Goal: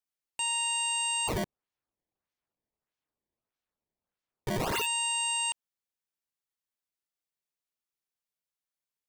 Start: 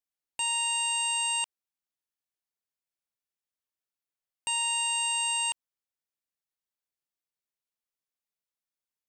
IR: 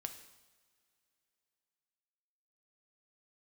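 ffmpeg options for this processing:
-filter_complex "[0:a]asplit=3[link_01][link_02][link_03];[link_01]afade=type=out:start_time=1.27:duration=0.02[link_04];[link_02]acrusher=samples=19:mix=1:aa=0.000001:lfo=1:lforange=30.4:lforate=1.6,afade=type=in:start_time=1.27:duration=0.02,afade=type=out:start_time=4.85:duration=0.02[link_05];[link_03]afade=type=in:start_time=4.85:duration=0.02[link_06];[link_04][link_05][link_06]amix=inputs=3:normalize=0,volume=-1.5dB"

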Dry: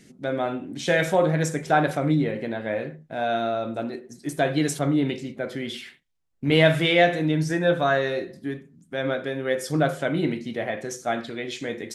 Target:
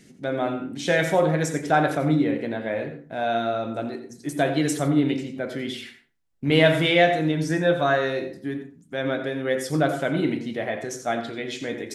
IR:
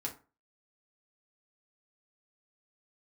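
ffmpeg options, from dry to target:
-filter_complex "[0:a]asplit=2[link_01][link_02];[1:a]atrim=start_sample=2205,adelay=86[link_03];[link_02][link_03]afir=irnorm=-1:irlink=0,volume=-10dB[link_04];[link_01][link_04]amix=inputs=2:normalize=0"

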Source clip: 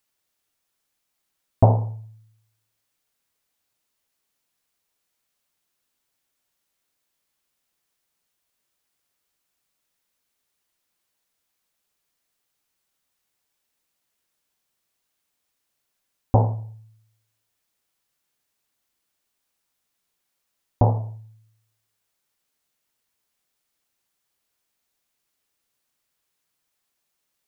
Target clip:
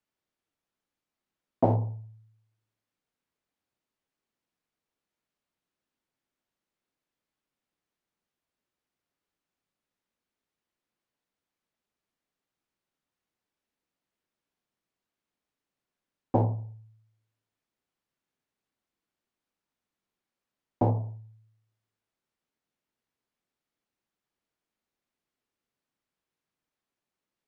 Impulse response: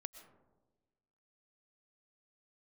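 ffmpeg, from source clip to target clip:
-filter_complex "[0:a]aemphasis=mode=reproduction:type=75kf,acrossover=split=170|340[link_01][link_02][link_03];[link_01]aeval=exprs='0.106*(abs(mod(val(0)/0.106+3,4)-2)-1)':channel_layout=same[link_04];[link_02]acontrast=89[link_05];[link_04][link_05][link_03]amix=inputs=3:normalize=0,volume=-5.5dB"

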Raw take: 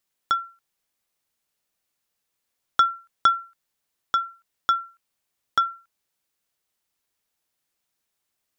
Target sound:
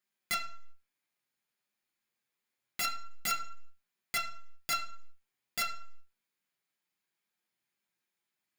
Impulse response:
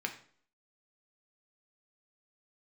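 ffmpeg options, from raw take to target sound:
-filter_complex "[0:a]aeval=exprs='(mod(8.91*val(0)+1,2)-1)/8.91':channel_layout=same,aeval=exprs='0.119*(cos(1*acos(clip(val(0)/0.119,-1,1)))-cos(1*PI/2))+0.0422*(cos(4*acos(clip(val(0)/0.119,-1,1)))-cos(4*PI/2))':channel_layout=same,flanger=delay=4.9:depth=3.9:regen=-46:speed=0.26:shape=triangular[link_01];[1:a]atrim=start_sample=2205,afade=type=out:start_time=0.44:duration=0.01,atrim=end_sample=19845[link_02];[link_01][link_02]afir=irnorm=-1:irlink=0,volume=-3dB"

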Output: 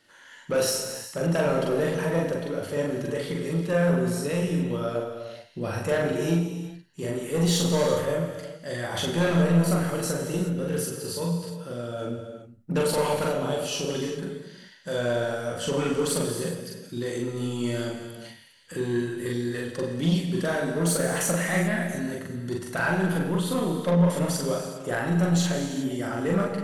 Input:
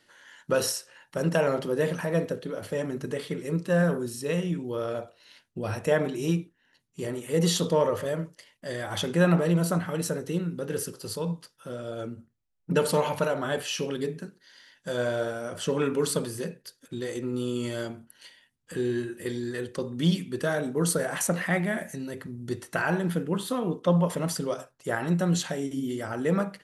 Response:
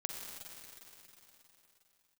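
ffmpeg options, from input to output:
-filter_complex "[0:a]asettb=1/sr,asplit=3[link_01][link_02][link_03];[link_01]atrim=end=13.274[link_04];[link_02]atrim=start=13.27:end=13.89,asetpts=PTS-STARTPTS,afade=type=in:duration=0.004:curve=qsin,afade=type=out:start_time=0.616:duration=0.004:curve=qsin,equalizer=frequency=1700:width_type=o:width=0.71:gain=-13[link_05];[link_03]atrim=start=13.886[link_06];[link_04][link_05]acrossfade=duration=0.004:curve1=hsin:curve2=qsin[link_07];[link_07][link_06]acrossfade=duration=0.004:curve1=qsin:curve2=hsin,asoftclip=type=tanh:threshold=-19.5dB,asplit=2[link_08][link_09];[1:a]atrim=start_sample=2205,afade=type=out:start_time=0.44:duration=0.01,atrim=end_sample=19845,adelay=42[link_10];[link_09][link_10]afir=irnorm=-1:irlink=0,volume=0.5dB[link_11];[link_08][link_11]amix=inputs=2:normalize=0"

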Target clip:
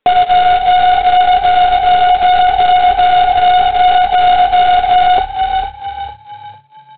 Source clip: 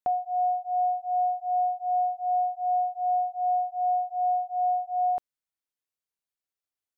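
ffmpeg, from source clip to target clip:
ffmpeg -i in.wav -filter_complex "[0:a]agate=range=-7dB:threshold=-35dB:ratio=16:detection=peak,asplit=2[link_01][link_02];[link_02]aeval=exprs='clip(val(0),-1,0.00841)':channel_layout=same,volume=-9dB[link_03];[link_01][link_03]amix=inputs=2:normalize=0,acompressor=threshold=-31dB:ratio=2.5,flanger=delay=3.5:depth=6.5:regen=3:speed=0.71:shape=triangular,aresample=8000,acrusher=bits=2:mode=log:mix=0:aa=0.000001,aresample=44100,equalizer=frequency=420:width=3.8:gain=14,asplit=5[link_04][link_05][link_06][link_07][link_08];[link_05]adelay=452,afreqshift=34,volume=-14dB[link_09];[link_06]adelay=904,afreqshift=68,volume=-22.2dB[link_10];[link_07]adelay=1356,afreqshift=102,volume=-30.4dB[link_11];[link_08]adelay=1808,afreqshift=136,volume=-38.5dB[link_12];[link_04][link_09][link_10][link_11][link_12]amix=inputs=5:normalize=0,alimiter=level_in=31.5dB:limit=-1dB:release=50:level=0:latency=1,volume=-1.5dB" out.wav

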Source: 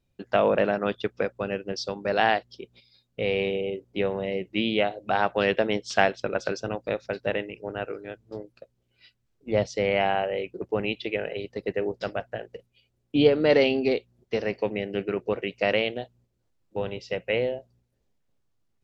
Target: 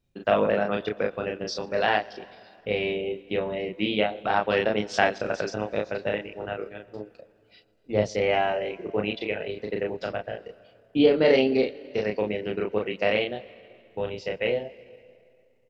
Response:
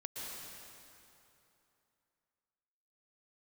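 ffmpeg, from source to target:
-filter_complex "[0:a]asplit=2[link_01][link_02];[link_02]adelay=38,volume=-3dB[link_03];[link_01][link_03]amix=inputs=2:normalize=0,asplit=2[link_04][link_05];[1:a]atrim=start_sample=2205,adelay=149[link_06];[link_05][link_06]afir=irnorm=-1:irlink=0,volume=-20dB[link_07];[link_04][link_07]amix=inputs=2:normalize=0,atempo=1.2,volume=-1.5dB"

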